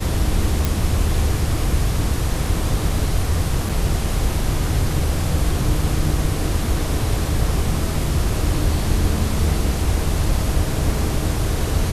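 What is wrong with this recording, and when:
0:00.65: click
0:03.69: drop-out 4.9 ms

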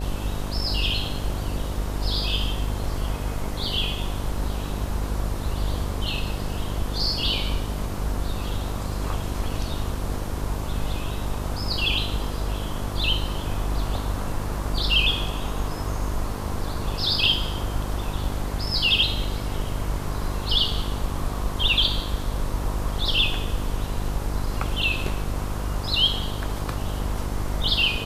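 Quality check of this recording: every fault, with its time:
mains buzz 50 Hz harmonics 15 −30 dBFS

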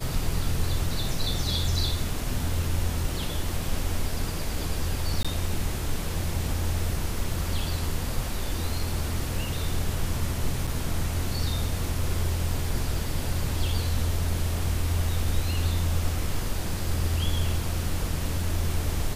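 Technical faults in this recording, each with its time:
0:05.23–0:05.25: drop-out 16 ms
0:10.67–0:10.68: drop-out 5.1 ms

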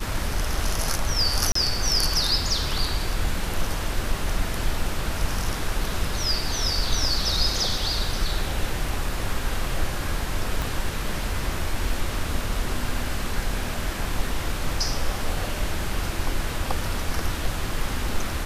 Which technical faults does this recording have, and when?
0:01.52–0:01.55: drop-out 34 ms
0:10.62: click

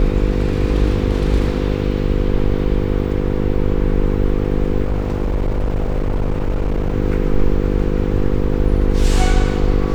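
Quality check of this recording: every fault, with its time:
mains buzz 50 Hz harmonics 10 −20 dBFS
0:04.84–0:06.95: clipping −14 dBFS

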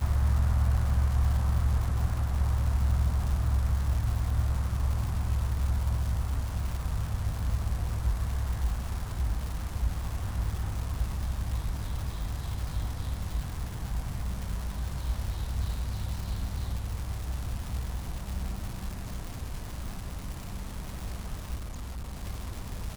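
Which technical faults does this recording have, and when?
surface crackle 340 per second −34 dBFS
0:21.55–0:22.24: clipping −33.5 dBFS

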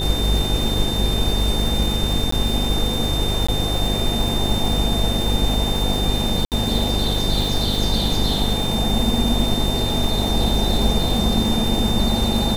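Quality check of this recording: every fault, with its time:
mains buzz 50 Hz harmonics 10 −24 dBFS
surface crackle 210 per second −25 dBFS
whistle 3,600 Hz −25 dBFS
0:02.31–0:02.32: drop-out 14 ms
0:03.47–0:03.48: drop-out 15 ms
0:06.45–0:06.52: drop-out 68 ms

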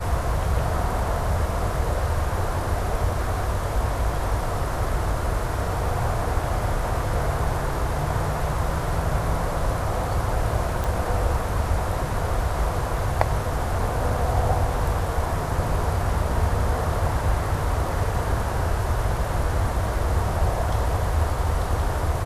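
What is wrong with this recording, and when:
0:10.84: click

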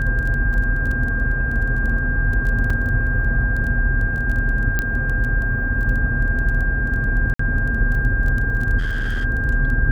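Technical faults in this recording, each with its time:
surface crackle 13 per second −25 dBFS
whistle 1,600 Hz −23 dBFS
0:02.70: drop-out 3.8 ms
0:04.79: click −7 dBFS
0:07.34–0:07.39: drop-out 54 ms
0:08.78–0:09.25: clipping −18.5 dBFS

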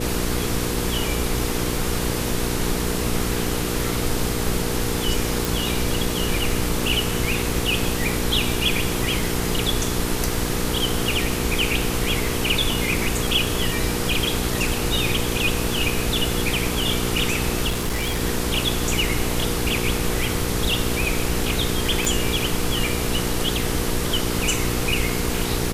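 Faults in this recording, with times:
mains hum 60 Hz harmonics 8 −27 dBFS
0:05.45: click
0:17.68–0:18.20: clipping −19.5 dBFS
0:22.05: click

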